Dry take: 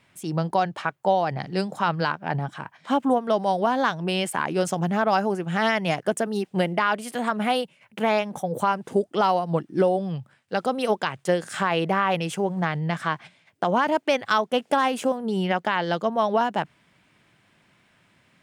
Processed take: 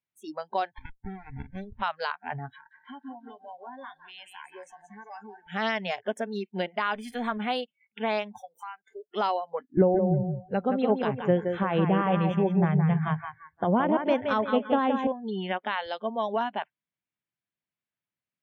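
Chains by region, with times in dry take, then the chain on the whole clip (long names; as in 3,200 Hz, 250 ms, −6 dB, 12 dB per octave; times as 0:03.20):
0:00.78–0:01.82: downward compressor 3 to 1, threshold −26 dBFS + windowed peak hold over 65 samples
0:02.53–0:05.47: downward compressor 2.5 to 1, threshold −38 dBFS + feedback echo with a high-pass in the loop 177 ms, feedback 54%, high-pass 310 Hz, level −5.5 dB
0:06.95–0:07.38: mu-law and A-law mismatch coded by mu + low-shelf EQ 140 Hz +8 dB
0:08.41–0:09.07: high-pass filter 1,300 Hz 6 dB per octave + downward compressor 10 to 1, threshold −27 dBFS + one half of a high-frequency compander encoder only
0:09.77–0:15.07: spectral tilt −4 dB per octave + repeating echo 171 ms, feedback 38%, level −5.5 dB
0:15.86–0:16.36: high-pass filter 77 Hz 24 dB per octave + parametric band 1,600 Hz −4.5 dB 0.82 octaves
whole clip: high shelf with overshoot 5,700 Hz −8.5 dB, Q 1.5; noise reduction from a noise print of the clip's start 30 dB; level −6 dB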